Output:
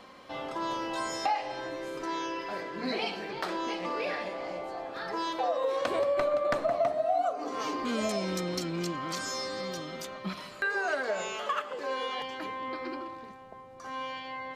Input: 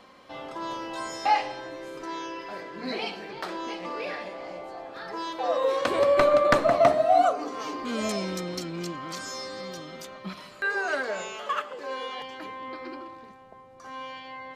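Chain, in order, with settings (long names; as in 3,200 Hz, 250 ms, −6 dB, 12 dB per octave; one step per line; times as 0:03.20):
dynamic equaliser 670 Hz, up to +5 dB, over −36 dBFS, Q 3
downward compressor 4 to 1, threshold −29 dBFS, peak gain reduction 16 dB
level +1.5 dB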